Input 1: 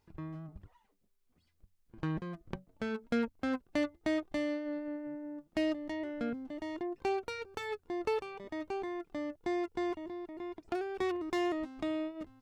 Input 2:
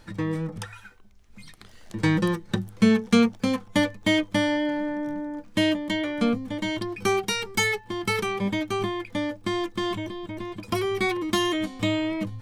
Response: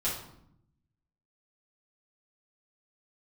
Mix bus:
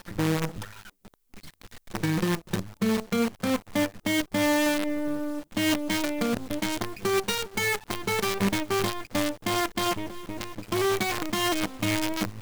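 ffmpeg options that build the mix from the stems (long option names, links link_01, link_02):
-filter_complex "[0:a]highshelf=frequency=6700:gain=11.5,volume=3dB[link_01];[1:a]highshelf=frequency=4100:gain=-7,acrusher=bits=5:dc=4:mix=0:aa=0.000001,volume=2.5dB[link_02];[link_01][link_02]amix=inputs=2:normalize=0,alimiter=limit=-16.5dB:level=0:latency=1:release=195"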